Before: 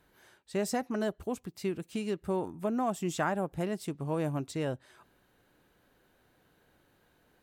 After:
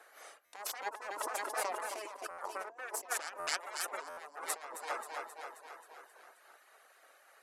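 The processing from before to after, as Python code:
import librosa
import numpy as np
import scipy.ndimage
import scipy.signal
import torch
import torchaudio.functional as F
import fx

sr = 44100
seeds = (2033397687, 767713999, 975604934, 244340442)

y = fx.self_delay(x, sr, depth_ms=0.8)
y = scipy.signal.sosfilt(scipy.signal.cheby1(3, 1.0, 11000.0, 'lowpass', fs=sr, output='sos'), y)
y = fx.peak_eq(y, sr, hz=3400.0, db=-9.0, octaves=0.92)
y = fx.echo_feedback(y, sr, ms=266, feedback_pct=60, wet_db=-10)
y = fx.dereverb_blind(y, sr, rt60_s=0.6)
y = fx.over_compress(y, sr, threshold_db=-43.0, ratio=-1.0)
y = fx.peak_eq(y, sr, hz=1000.0, db=14.5, octaves=0.33)
y = fx.spec_gate(y, sr, threshold_db=-10, keep='weak')
y = scipy.signal.sosfilt(scipy.signal.butter(4, 450.0, 'highpass', fs=sr, output='sos'), y)
y = fx.buffer_glitch(y, sr, at_s=(0.45, 2.3, 3.39, 4.09), block=512, repeats=6)
y = fx.sustainer(y, sr, db_per_s=38.0, at=(1.08, 2.17))
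y = y * librosa.db_to_amplitude(7.0)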